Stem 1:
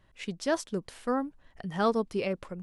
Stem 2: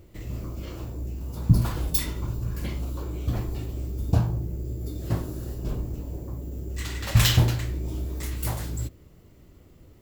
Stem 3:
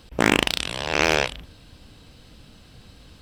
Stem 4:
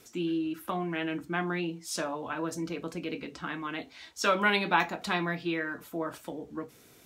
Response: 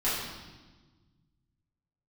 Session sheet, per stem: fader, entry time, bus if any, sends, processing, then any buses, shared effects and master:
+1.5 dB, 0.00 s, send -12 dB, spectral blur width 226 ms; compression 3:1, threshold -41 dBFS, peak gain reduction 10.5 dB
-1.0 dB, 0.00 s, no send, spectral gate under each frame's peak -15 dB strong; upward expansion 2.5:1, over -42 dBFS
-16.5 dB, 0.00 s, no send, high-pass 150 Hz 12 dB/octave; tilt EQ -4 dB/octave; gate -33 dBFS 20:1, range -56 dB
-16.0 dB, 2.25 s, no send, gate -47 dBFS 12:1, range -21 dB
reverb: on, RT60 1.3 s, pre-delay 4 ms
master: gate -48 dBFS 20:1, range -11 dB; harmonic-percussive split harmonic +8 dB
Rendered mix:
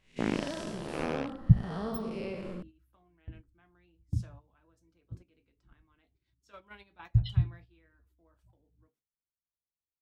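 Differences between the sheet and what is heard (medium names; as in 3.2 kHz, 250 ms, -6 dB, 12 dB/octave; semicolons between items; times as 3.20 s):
stem 4 -16.0 dB -> -24.5 dB; master: missing harmonic-percussive split harmonic +8 dB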